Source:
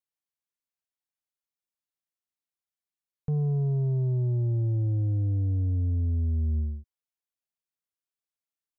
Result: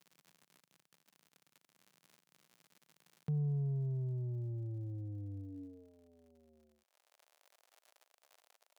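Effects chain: crackle 100/s -49 dBFS; compressor 2:1, threshold -54 dBFS, peak gain reduction 15 dB; high-pass sweep 160 Hz -> 620 Hz, 5.39–5.92; gain +1 dB

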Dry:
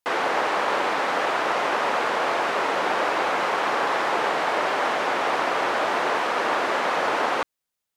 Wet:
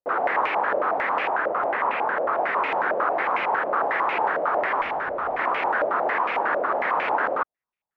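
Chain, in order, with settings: 1.27–2.33 air absorption 140 m; 4.81–5.39 tube stage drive 21 dB, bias 0.45; stepped low-pass 11 Hz 580–2400 Hz; gain -5.5 dB

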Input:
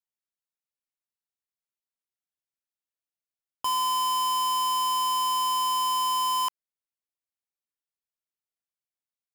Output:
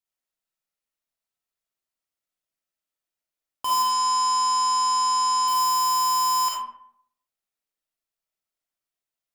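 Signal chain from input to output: 3.82–5.48 LPF 8700 Hz 24 dB/oct; reverb RT60 0.70 s, pre-delay 10 ms, DRR -4 dB

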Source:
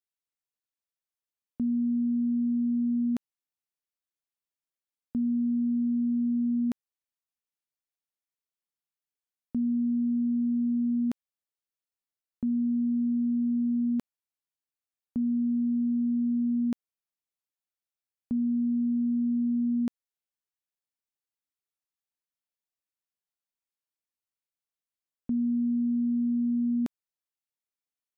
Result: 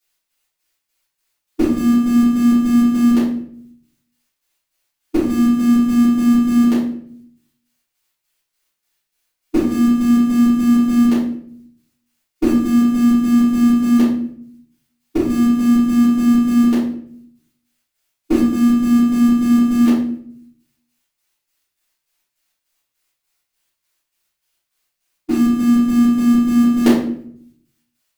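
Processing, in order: tilt shelf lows -4.5 dB, about 690 Hz; formant shift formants +5 st; in parallel at -9 dB: bit-crush 6-bit; on the sum: chopper 3.4 Hz, depth 65%, duty 55%; shoebox room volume 100 m³, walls mixed, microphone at 3.3 m; gain +8.5 dB

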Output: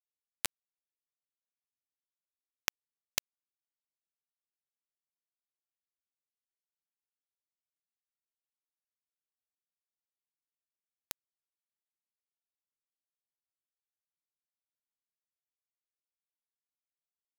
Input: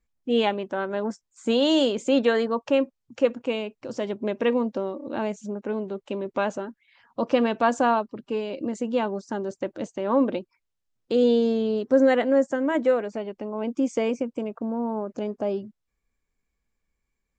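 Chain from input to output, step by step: compressor 16:1, threshold -30 dBFS, peak gain reduction 17 dB; steep high-pass 1300 Hz 96 dB/oct; harmoniser -12 st -5 dB; notch 4100 Hz, Q 18; bit-crush 5-bit; gain +16 dB

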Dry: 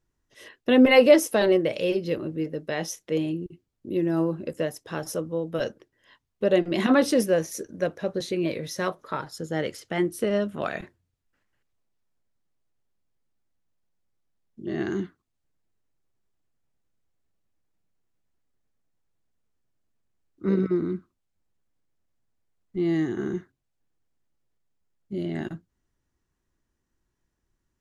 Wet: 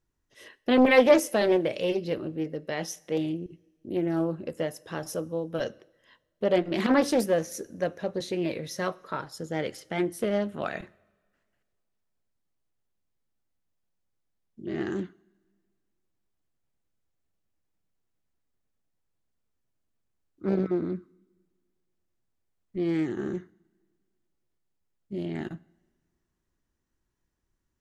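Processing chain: two-slope reverb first 0.64 s, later 2 s, from -16 dB, DRR 19.5 dB; Doppler distortion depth 0.45 ms; gain -2.5 dB

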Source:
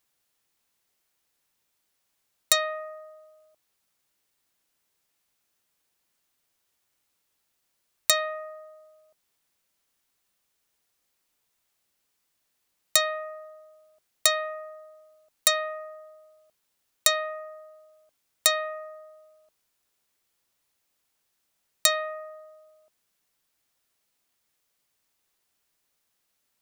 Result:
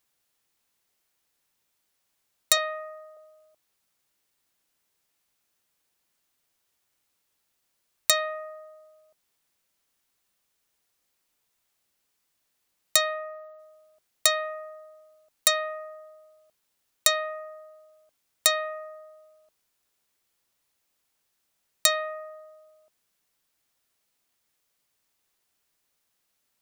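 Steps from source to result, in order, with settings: 2.57–3.17 HPF 470 Hz; 13.13–13.58 bell 9600 Hz -6.5 dB -> -13.5 dB 1.3 oct

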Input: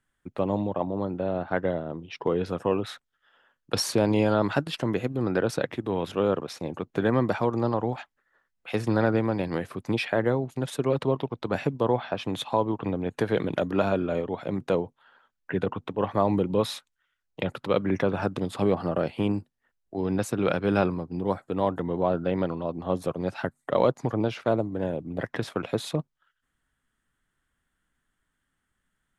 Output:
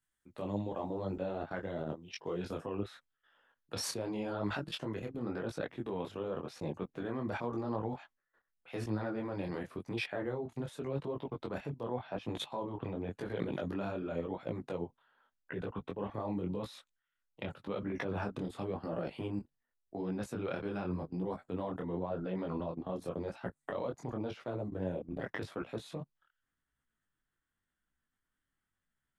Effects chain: high shelf 4100 Hz +12 dB, from 2.58 s -2 dB; level quantiser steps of 17 dB; detuned doubles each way 31 cents; gain +1 dB

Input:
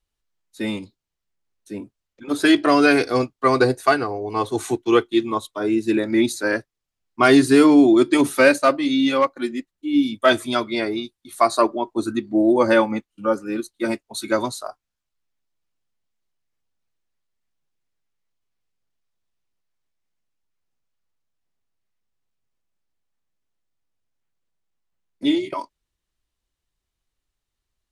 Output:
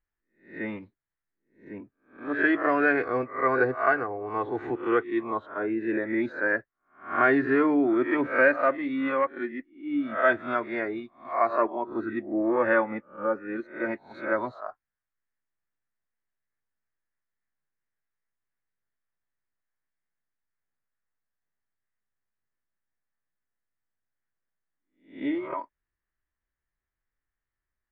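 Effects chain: spectral swells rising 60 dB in 0.39 s; dynamic EQ 530 Hz, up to +5 dB, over -29 dBFS, Q 1; in parallel at -2 dB: compressor, threshold -20 dBFS, peak gain reduction 14.5 dB; on the sum: ladder low-pass 2000 Hz, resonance 60%; gain -4 dB

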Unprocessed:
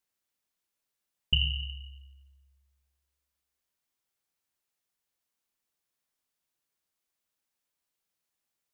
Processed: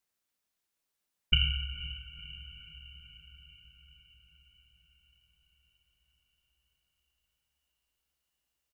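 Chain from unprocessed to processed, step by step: harmoniser -12 st -17 dB, -4 st -14 dB; diffused feedback echo 0.496 s, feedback 63%, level -13.5 dB

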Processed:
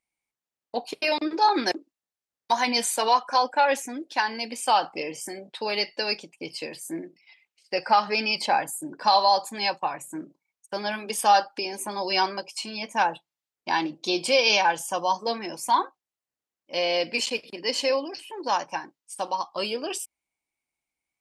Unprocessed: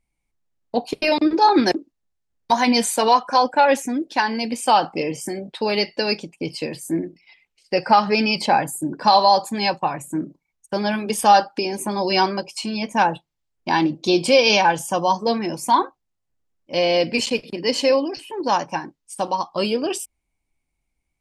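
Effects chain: HPF 670 Hz 6 dB/oct; gain -3 dB

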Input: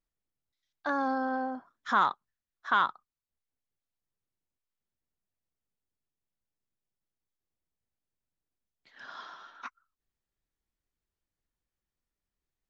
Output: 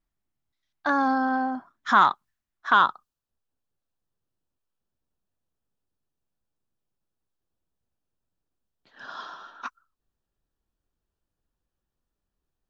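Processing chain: bell 490 Hz -14.5 dB 0.21 oct, from 2.72 s 2100 Hz; mismatched tape noise reduction decoder only; gain +7.5 dB

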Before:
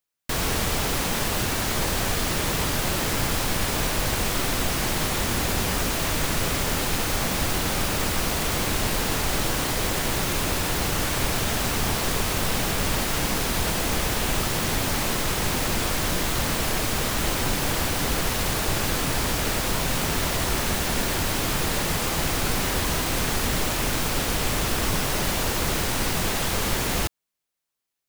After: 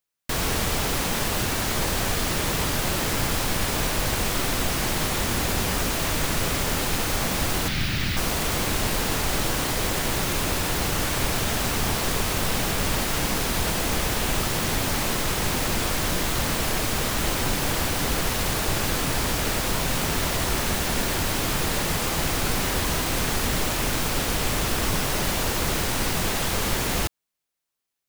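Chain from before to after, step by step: 7.68–8.17 ten-band EQ 125 Hz +6 dB, 500 Hz -10 dB, 1000 Hz -8 dB, 2000 Hz +4 dB, 4000 Hz +4 dB, 8000 Hz -8 dB, 16000 Hz -7 dB

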